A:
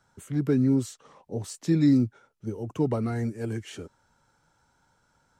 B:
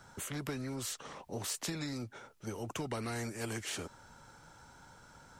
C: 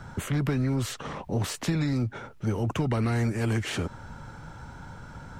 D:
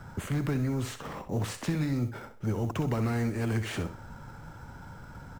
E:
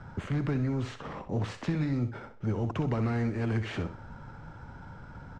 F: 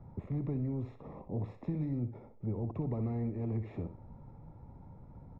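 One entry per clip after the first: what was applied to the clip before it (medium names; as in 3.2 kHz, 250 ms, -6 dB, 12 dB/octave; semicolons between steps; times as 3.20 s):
compression 12:1, threshold -25 dBFS, peak gain reduction 9.5 dB; spectrum-flattening compressor 2:1; trim -5 dB
tone controls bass +9 dB, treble -10 dB; in parallel at -1 dB: peak limiter -33.5 dBFS, peak gain reduction 11.5 dB; on the sum: trim +5 dB
modulation noise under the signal 32 dB; in parallel at -7 dB: sample-rate reducer 6.5 kHz, jitter 0%; on the sum: feedback delay 64 ms, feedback 27%, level -11 dB; trim -6 dB
distance through air 140 m
boxcar filter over 29 samples; trim -5 dB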